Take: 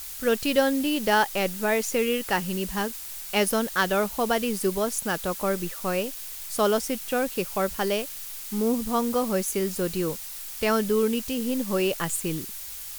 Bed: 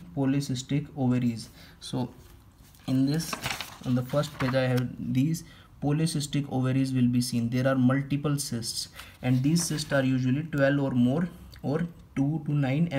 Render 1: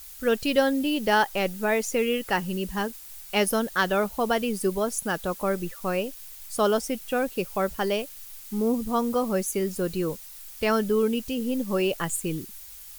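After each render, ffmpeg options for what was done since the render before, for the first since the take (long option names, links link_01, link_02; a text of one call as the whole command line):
ffmpeg -i in.wav -af "afftdn=noise_reduction=8:noise_floor=-38" out.wav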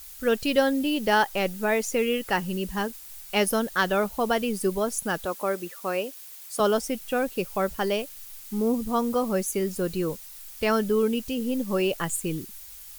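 ffmpeg -i in.wav -filter_complex "[0:a]asettb=1/sr,asplit=3[link_01][link_02][link_03];[link_01]atrim=end=5.254[link_04];[link_02]atrim=start=5.25:end=6.6,asetpts=PTS-STARTPTS,afade=type=in:duration=0.004:curve=qsin,afade=type=out:start_time=1.346:duration=0.004:curve=qsin,highpass=280[link_05];[link_03]atrim=start=6.596[link_06];[link_04][link_05]acrossfade=duration=0.004:curve1=hsin:curve2=qsin[link_07];[link_07][link_06]acrossfade=duration=0.004:curve1=qsin:curve2=hsin" out.wav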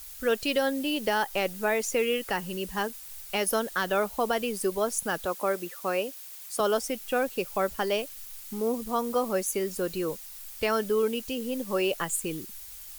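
ffmpeg -i in.wav -filter_complex "[0:a]acrossover=split=320|7100[link_01][link_02][link_03];[link_01]acompressor=threshold=-39dB:ratio=6[link_04];[link_02]alimiter=limit=-16dB:level=0:latency=1:release=116[link_05];[link_04][link_05][link_03]amix=inputs=3:normalize=0" out.wav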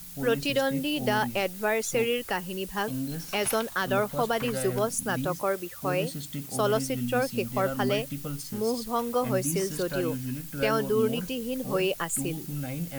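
ffmpeg -i in.wav -i bed.wav -filter_complex "[1:a]volume=-8dB[link_01];[0:a][link_01]amix=inputs=2:normalize=0" out.wav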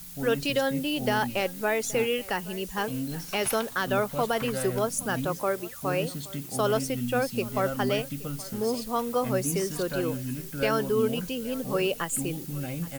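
ffmpeg -i in.wav -af "aecho=1:1:823:0.0944" out.wav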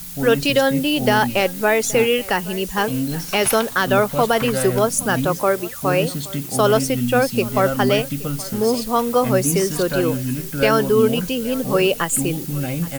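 ffmpeg -i in.wav -af "volume=9.5dB" out.wav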